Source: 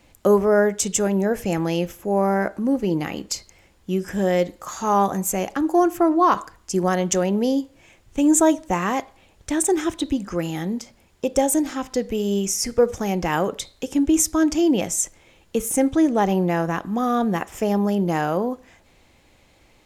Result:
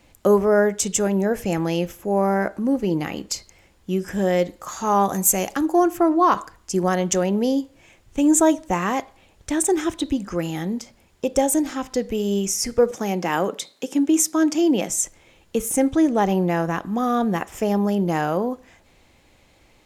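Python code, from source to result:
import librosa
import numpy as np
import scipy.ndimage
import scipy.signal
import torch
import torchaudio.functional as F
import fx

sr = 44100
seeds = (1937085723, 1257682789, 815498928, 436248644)

y = fx.high_shelf(x, sr, hz=3900.0, db=9.5, at=(5.09, 5.66))
y = fx.highpass(y, sr, hz=170.0, slope=24, at=(12.91, 14.9))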